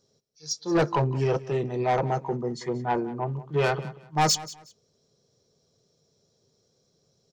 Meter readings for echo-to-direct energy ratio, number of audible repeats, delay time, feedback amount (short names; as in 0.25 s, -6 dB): -17.5 dB, 2, 0.183 s, 24%